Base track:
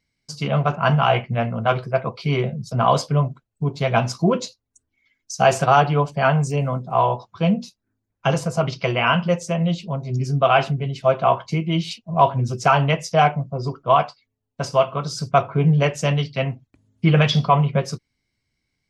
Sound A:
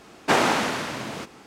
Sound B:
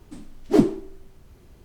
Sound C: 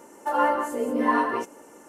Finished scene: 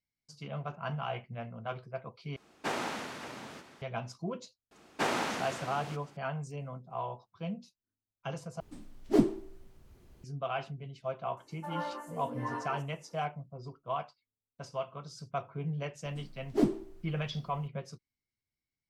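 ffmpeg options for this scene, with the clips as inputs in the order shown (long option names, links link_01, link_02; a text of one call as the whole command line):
ffmpeg -i bed.wav -i cue0.wav -i cue1.wav -i cue2.wav -filter_complex "[1:a]asplit=2[link_01][link_02];[2:a]asplit=2[link_03][link_04];[0:a]volume=-19dB[link_05];[link_01]aecho=1:1:562:0.211[link_06];[link_05]asplit=3[link_07][link_08][link_09];[link_07]atrim=end=2.364[link_10];[link_06]atrim=end=1.46,asetpts=PTS-STARTPTS,volume=-14.5dB[link_11];[link_08]atrim=start=3.816:end=8.604[link_12];[link_03]atrim=end=1.64,asetpts=PTS-STARTPTS,volume=-7.5dB[link_13];[link_09]atrim=start=10.236[link_14];[link_02]atrim=end=1.46,asetpts=PTS-STARTPTS,volume=-11dB,afade=type=in:duration=0.004:curve=hsin,afade=type=out:start_time=1.456:duration=0.004:curve=hsin,adelay=4710[link_15];[3:a]atrim=end=1.88,asetpts=PTS-STARTPTS,volume=-15.5dB,afade=type=in:duration=0.004:curve=hsin,afade=type=out:start_time=1.876:duration=0.004:curve=hsin,adelay=11370[link_16];[link_04]atrim=end=1.64,asetpts=PTS-STARTPTS,volume=-10dB,afade=type=in:duration=0.004:curve=hsin,afade=type=out:start_time=1.636:duration=0.004:curve=hsin,adelay=707364S[link_17];[link_10][link_11]acrossfade=duration=0.004:curve1=hsin:curve2=hsin[link_18];[link_18][link_12]acrossfade=duration=0.004:curve1=hsin:curve2=hsin[link_19];[link_19][link_13]acrossfade=duration=0.004:curve1=hsin:curve2=hsin[link_20];[link_20][link_14]acrossfade=duration=0.004:curve1=hsin:curve2=hsin[link_21];[link_21][link_15][link_16][link_17]amix=inputs=4:normalize=0" out.wav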